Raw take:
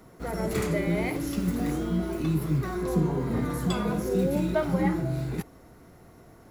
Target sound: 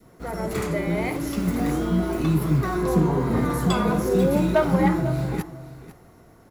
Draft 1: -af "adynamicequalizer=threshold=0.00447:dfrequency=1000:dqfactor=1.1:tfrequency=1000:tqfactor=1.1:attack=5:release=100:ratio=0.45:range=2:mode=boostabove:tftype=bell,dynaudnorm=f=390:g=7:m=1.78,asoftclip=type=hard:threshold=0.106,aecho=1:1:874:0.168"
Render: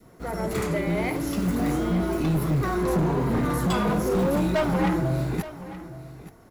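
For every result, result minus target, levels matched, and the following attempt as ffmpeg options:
echo 375 ms late; hard clipper: distortion +18 dB
-af "adynamicequalizer=threshold=0.00447:dfrequency=1000:dqfactor=1.1:tfrequency=1000:tqfactor=1.1:attack=5:release=100:ratio=0.45:range=2:mode=boostabove:tftype=bell,dynaudnorm=f=390:g=7:m=1.78,asoftclip=type=hard:threshold=0.106,aecho=1:1:499:0.168"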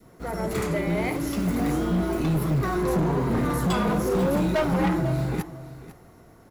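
hard clipper: distortion +18 dB
-af "adynamicequalizer=threshold=0.00447:dfrequency=1000:dqfactor=1.1:tfrequency=1000:tqfactor=1.1:attack=5:release=100:ratio=0.45:range=2:mode=boostabove:tftype=bell,dynaudnorm=f=390:g=7:m=1.78,asoftclip=type=hard:threshold=0.282,aecho=1:1:499:0.168"

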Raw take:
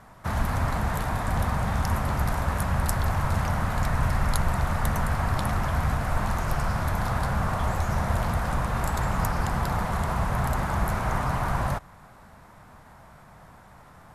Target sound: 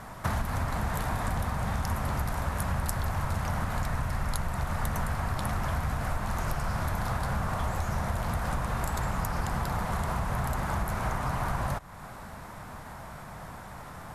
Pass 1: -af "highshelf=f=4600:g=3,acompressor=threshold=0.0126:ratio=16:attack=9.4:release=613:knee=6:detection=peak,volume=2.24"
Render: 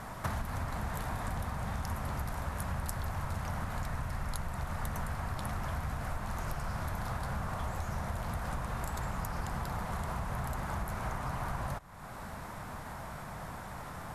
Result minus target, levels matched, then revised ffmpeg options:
compression: peak gain reduction +6 dB
-af "highshelf=f=4600:g=3,acompressor=threshold=0.0266:ratio=16:attack=9.4:release=613:knee=6:detection=peak,volume=2.24"

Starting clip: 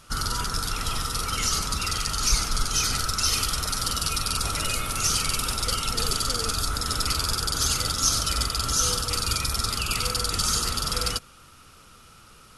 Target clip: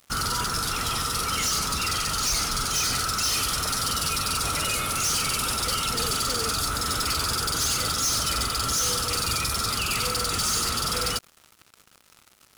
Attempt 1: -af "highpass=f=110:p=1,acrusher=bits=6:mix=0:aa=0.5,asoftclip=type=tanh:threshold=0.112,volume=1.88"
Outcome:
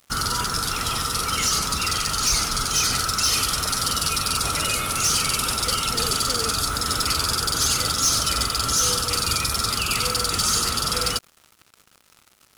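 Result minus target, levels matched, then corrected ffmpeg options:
saturation: distortion -7 dB
-af "highpass=f=110:p=1,acrusher=bits=6:mix=0:aa=0.5,asoftclip=type=tanh:threshold=0.0447,volume=1.88"

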